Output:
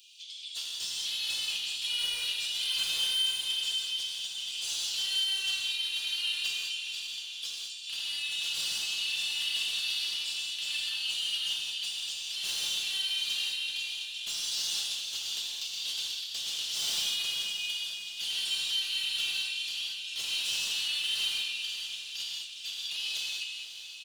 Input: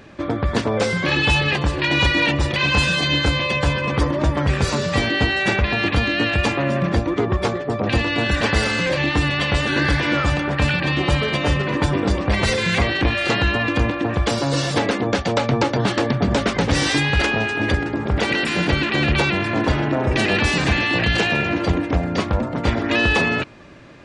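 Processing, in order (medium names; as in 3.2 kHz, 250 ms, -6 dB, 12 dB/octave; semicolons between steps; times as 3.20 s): steep high-pass 2.9 kHz 72 dB/octave; peaking EQ 4.9 kHz -4.5 dB 2 oct; comb 4.5 ms, depth 65%; in parallel at +3 dB: compression, threshold -45 dBFS, peak gain reduction 21 dB; on the sum: flange 0.48 Hz, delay 5.6 ms, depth 7.2 ms, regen +52%; saturation -32.5 dBFS, distortion -11 dB; on a send: echo that smears into a reverb 544 ms, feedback 49%, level -10 dB; on the sum: gated-style reverb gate 240 ms flat, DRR -3.5 dB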